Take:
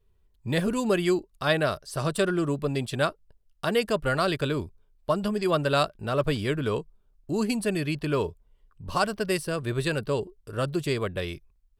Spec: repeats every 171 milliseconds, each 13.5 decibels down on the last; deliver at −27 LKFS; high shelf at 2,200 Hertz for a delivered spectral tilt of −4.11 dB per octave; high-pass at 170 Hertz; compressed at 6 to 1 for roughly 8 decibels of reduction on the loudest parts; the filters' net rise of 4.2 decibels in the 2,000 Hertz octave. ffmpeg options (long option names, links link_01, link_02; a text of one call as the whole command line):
ffmpeg -i in.wav -af "highpass=170,equalizer=frequency=2000:width_type=o:gain=3,highshelf=frequency=2200:gain=5,acompressor=threshold=-26dB:ratio=6,aecho=1:1:171|342:0.211|0.0444,volume=4dB" out.wav